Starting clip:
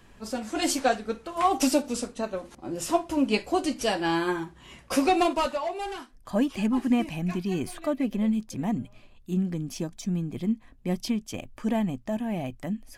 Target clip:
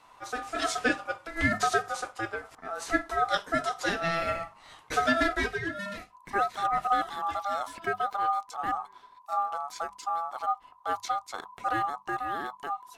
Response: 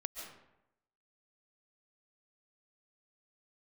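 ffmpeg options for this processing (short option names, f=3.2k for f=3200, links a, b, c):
-filter_complex "[0:a]acrossover=split=7600[a][b];[b]acompressor=threshold=-52dB:ratio=4:attack=1:release=60[c];[a][c]amix=inputs=2:normalize=0,aeval=exprs='val(0)*sin(2*PI*1000*n/s)':c=same,bandreject=f=50:t=h:w=6,bandreject=f=100:t=h:w=6,bandreject=f=150:t=h:w=6,bandreject=f=200:t=h:w=6"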